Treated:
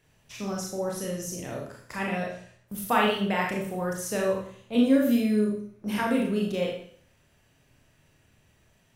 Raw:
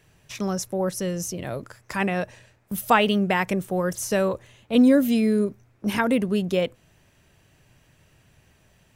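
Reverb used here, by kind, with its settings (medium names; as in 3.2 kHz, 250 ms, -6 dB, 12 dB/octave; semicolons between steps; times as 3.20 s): Schroeder reverb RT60 0.56 s, combs from 26 ms, DRR -2 dB; trim -8 dB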